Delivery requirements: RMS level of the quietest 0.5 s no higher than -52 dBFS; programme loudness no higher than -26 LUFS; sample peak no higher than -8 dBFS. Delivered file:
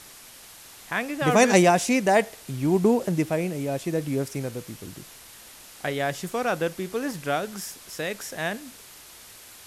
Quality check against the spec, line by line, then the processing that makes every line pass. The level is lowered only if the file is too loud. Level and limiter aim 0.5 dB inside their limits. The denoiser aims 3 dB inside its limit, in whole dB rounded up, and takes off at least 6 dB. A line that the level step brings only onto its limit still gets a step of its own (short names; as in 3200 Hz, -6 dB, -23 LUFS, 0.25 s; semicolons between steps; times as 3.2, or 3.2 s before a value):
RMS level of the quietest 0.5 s -47 dBFS: fail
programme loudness -25.0 LUFS: fail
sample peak -4.5 dBFS: fail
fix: denoiser 7 dB, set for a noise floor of -47 dBFS; gain -1.5 dB; limiter -8.5 dBFS